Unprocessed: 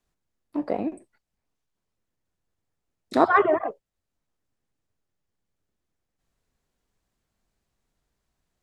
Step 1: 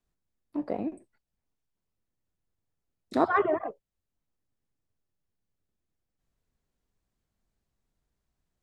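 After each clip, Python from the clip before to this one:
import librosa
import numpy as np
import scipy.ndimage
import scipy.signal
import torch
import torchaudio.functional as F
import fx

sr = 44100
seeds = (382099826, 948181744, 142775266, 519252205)

y = fx.low_shelf(x, sr, hz=340.0, db=5.5)
y = y * 10.0 ** (-7.0 / 20.0)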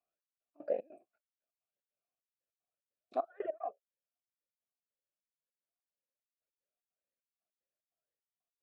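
y = fx.rider(x, sr, range_db=10, speed_s=2.0)
y = fx.step_gate(y, sr, bpm=150, pattern='xx..x.xx.x', floor_db=-24.0, edge_ms=4.5)
y = fx.vowel_sweep(y, sr, vowels='a-e', hz=1.9)
y = y * 10.0 ** (2.0 / 20.0)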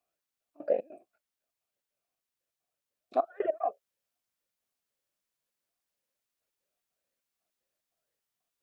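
y = fx.rider(x, sr, range_db=10, speed_s=0.5)
y = y * 10.0 ** (8.0 / 20.0)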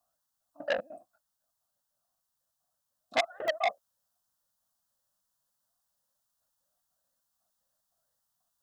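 y = fx.fixed_phaser(x, sr, hz=960.0, stages=4)
y = fx.buffer_crackle(y, sr, first_s=0.78, period_s=0.3, block=64, kind='zero')
y = fx.transformer_sat(y, sr, knee_hz=3400.0)
y = y * 10.0 ** (7.5 / 20.0)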